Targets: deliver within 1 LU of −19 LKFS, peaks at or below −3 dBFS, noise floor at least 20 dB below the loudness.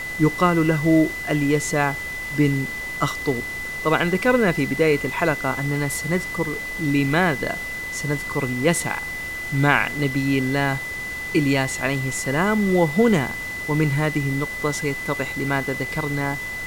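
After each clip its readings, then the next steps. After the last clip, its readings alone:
interfering tone 2,000 Hz; level of the tone −28 dBFS; background noise floor −30 dBFS; target noise floor −42 dBFS; integrated loudness −22.0 LKFS; sample peak −2.0 dBFS; target loudness −19.0 LKFS
→ notch filter 2,000 Hz, Q 30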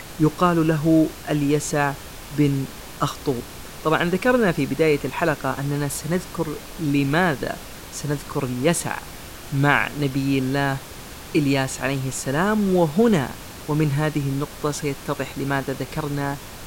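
interfering tone none found; background noise floor −38 dBFS; target noise floor −43 dBFS
→ noise reduction from a noise print 6 dB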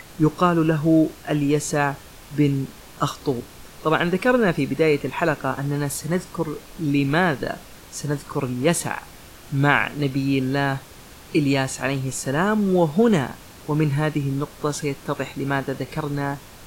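background noise floor −44 dBFS; integrated loudness −22.5 LKFS; sample peak −2.5 dBFS; target loudness −19.0 LKFS
→ level +3.5 dB
brickwall limiter −3 dBFS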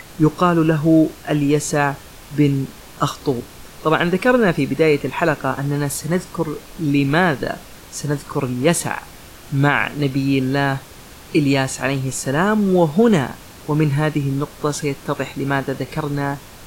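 integrated loudness −19.5 LKFS; sample peak −3.0 dBFS; background noise floor −41 dBFS

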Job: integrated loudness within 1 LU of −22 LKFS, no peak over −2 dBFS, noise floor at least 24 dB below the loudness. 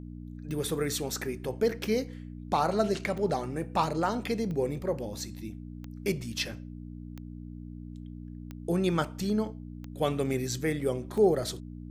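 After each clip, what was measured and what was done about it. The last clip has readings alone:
number of clicks 9; mains hum 60 Hz; hum harmonics up to 300 Hz; level of the hum −40 dBFS; integrated loudness −30.5 LKFS; sample peak −12.5 dBFS; target loudness −22.0 LKFS
→ click removal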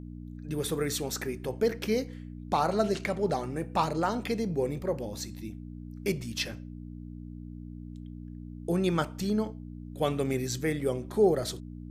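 number of clicks 0; mains hum 60 Hz; hum harmonics up to 300 Hz; level of the hum −40 dBFS
→ hum removal 60 Hz, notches 5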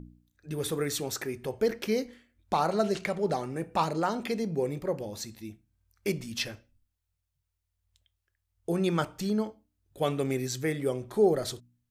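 mains hum none found; integrated loudness −30.5 LKFS; sample peak −12.5 dBFS; target loudness −22.0 LKFS
→ level +8.5 dB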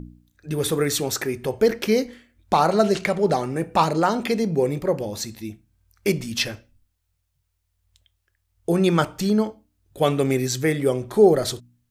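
integrated loudness −22.0 LKFS; sample peak −4.0 dBFS; background noise floor −74 dBFS

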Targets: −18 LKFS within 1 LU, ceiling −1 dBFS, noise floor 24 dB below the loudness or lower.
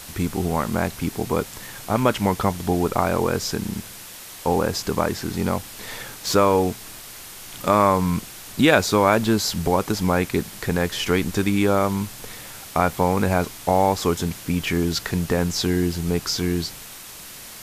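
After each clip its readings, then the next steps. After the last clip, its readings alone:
background noise floor −40 dBFS; target noise floor −46 dBFS; integrated loudness −22.0 LKFS; sample peak −2.0 dBFS; target loudness −18.0 LKFS
→ broadband denoise 6 dB, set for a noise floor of −40 dBFS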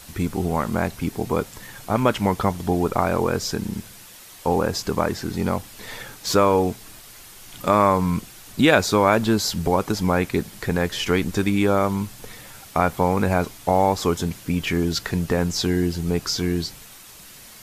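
background noise floor −44 dBFS; target noise floor −46 dBFS
→ broadband denoise 6 dB, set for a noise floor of −44 dBFS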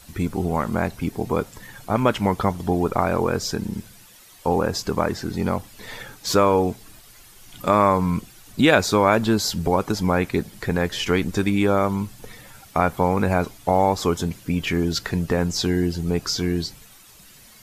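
background noise floor −48 dBFS; integrated loudness −22.5 LKFS; sample peak −2.0 dBFS; target loudness −18.0 LKFS
→ level +4.5 dB
brickwall limiter −1 dBFS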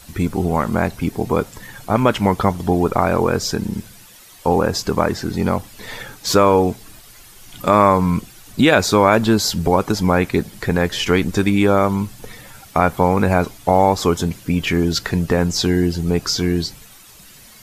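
integrated loudness −18.0 LKFS; sample peak −1.0 dBFS; background noise floor −44 dBFS

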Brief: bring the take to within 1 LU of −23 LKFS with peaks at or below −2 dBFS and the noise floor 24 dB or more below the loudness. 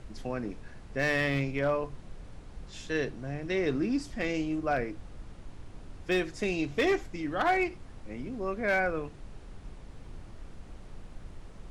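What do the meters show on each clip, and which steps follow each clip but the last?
share of clipped samples 0.3%; peaks flattened at −19.5 dBFS; background noise floor −48 dBFS; target noise floor −55 dBFS; integrated loudness −31.0 LKFS; sample peak −19.5 dBFS; target loudness −23.0 LKFS
→ clipped peaks rebuilt −19.5 dBFS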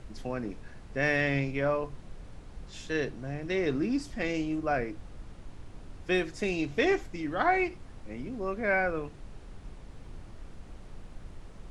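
share of clipped samples 0.0%; background noise floor −48 dBFS; target noise floor −55 dBFS
→ noise reduction from a noise print 7 dB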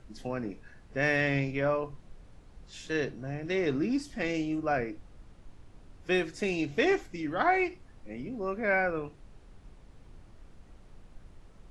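background noise floor −55 dBFS; integrated loudness −30.5 LKFS; sample peak −13.0 dBFS; target loudness −23.0 LKFS
→ level +7.5 dB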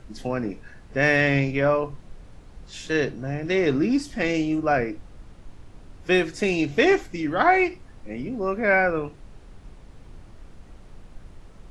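integrated loudness −23.0 LKFS; sample peak −5.5 dBFS; background noise floor −47 dBFS

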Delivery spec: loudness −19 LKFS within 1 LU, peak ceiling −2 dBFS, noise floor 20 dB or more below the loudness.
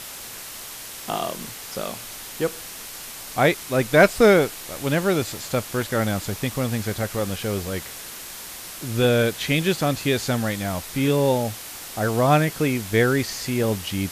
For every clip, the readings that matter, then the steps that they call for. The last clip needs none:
background noise floor −37 dBFS; target noise floor −43 dBFS; integrated loudness −22.5 LKFS; sample peak −3.5 dBFS; target loudness −19.0 LKFS
→ broadband denoise 6 dB, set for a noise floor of −37 dBFS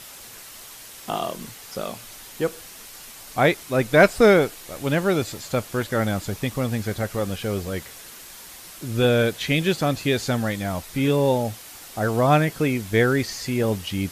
background noise floor −42 dBFS; target noise floor −43 dBFS
→ broadband denoise 6 dB, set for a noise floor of −42 dBFS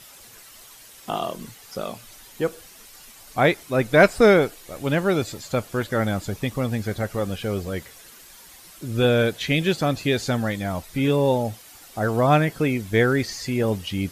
background noise floor −47 dBFS; integrated loudness −22.5 LKFS; sample peak −3.5 dBFS; target loudness −19.0 LKFS
→ level +3.5 dB
brickwall limiter −2 dBFS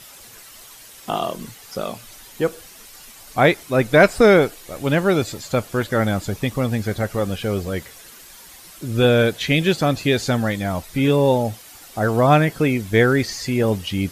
integrated loudness −19.5 LKFS; sample peak −2.0 dBFS; background noise floor −44 dBFS

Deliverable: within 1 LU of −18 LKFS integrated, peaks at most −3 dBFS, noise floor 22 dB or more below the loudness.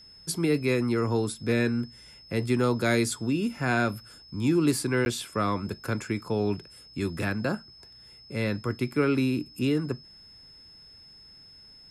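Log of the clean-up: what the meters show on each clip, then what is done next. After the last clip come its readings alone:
number of dropouts 1; longest dropout 11 ms; interfering tone 5,200 Hz; level of the tone −49 dBFS; integrated loudness −28.0 LKFS; sample peak −12.0 dBFS; target loudness −18.0 LKFS
→ repair the gap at 0:05.05, 11 ms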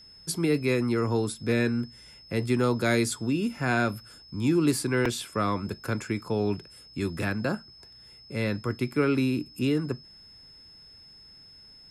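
number of dropouts 0; interfering tone 5,200 Hz; level of the tone −49 dBFS
→ notch filter 5,200 Hz, Q 30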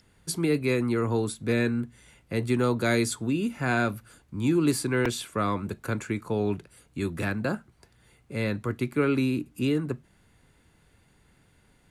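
interfering tone none found; integrated loudness −28.0 LKFS; sample peak −12.0 dBFS; target loudness −18.0 LKFS
→ level +10 dB
brickwall limiter −3 dBFS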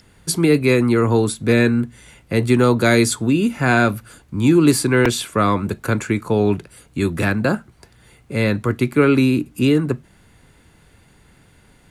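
integrated loudness −18.0 LKFS; sample peak −3.0 dBFS; background noise floor −53 dBFS

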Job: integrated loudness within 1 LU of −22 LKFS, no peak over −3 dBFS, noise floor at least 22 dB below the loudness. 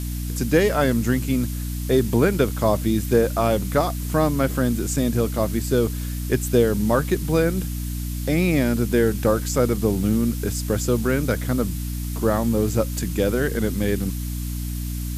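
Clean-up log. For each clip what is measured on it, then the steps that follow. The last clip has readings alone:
mains hum 60 Hz; hum harmonics up to 300 Hz; level of the hum −25 dBFS; background noise floor −28 dBFS; target noise floor −44 dBFS; integrated loudness −22.0 LKFS; sample peak −5.0 dBFS; target loudness −22.0 LKFS
→ mains-hum notches 60/120/180/240/300 Hz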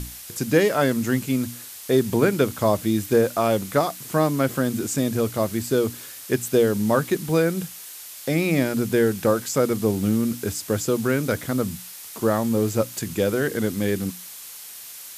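mains hum none found; background noise floor −40 dBFS; target noise floor −45 dBFS
→ noise reduction from a noise print 6 dB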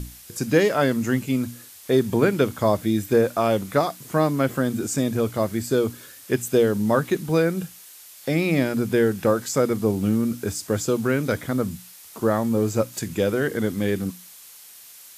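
background noise floor −46 dBFS; integrated loudness −23.0 LKFS; sample peak −6.0 dBFS; target loudness −22.0 LKFS
→ level +1 dB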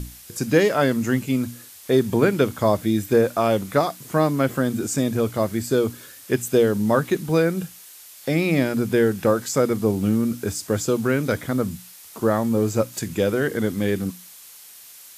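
integrated loudness −22.0 LKFS; sample peak −5.0 dBFS; background noise floor −45 dBFS

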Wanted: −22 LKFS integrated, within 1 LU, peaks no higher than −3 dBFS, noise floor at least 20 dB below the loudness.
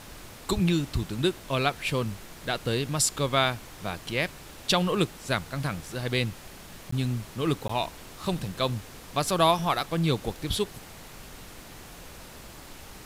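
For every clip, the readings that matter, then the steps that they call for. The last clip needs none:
number of dropouts 2; longest dropout 14 ms; background noise floor −46 dBFS; target noise floor −48 dBFS; integrated loudness −28.0 LKFS; sample peak −8.0 dBFS; target loudness −22.0 LKFS
→ repair the gap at 0:06.91/0:07.68, 14 ms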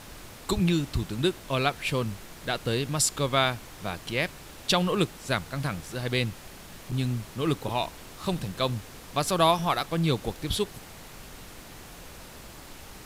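number of dropouts 0; background noise floor −46 dBFS; target noise floor −48 dBFS
→ noise reduction from a noise print 6 dB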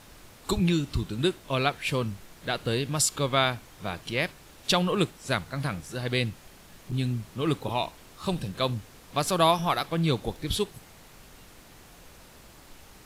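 background noise floor −52 dBFS; integrated loudness −28.5 LKFS; sample peak −8.0 dBFS; target loudness −22.0 LKFS
→ level +6.5 dB
brickwall limiter −3 dBFS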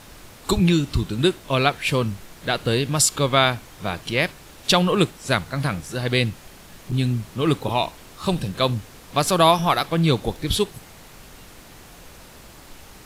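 integrated loudness −22.0 LKFS; sample peak −3.0 dBFS; background noise floor −45 dBFS

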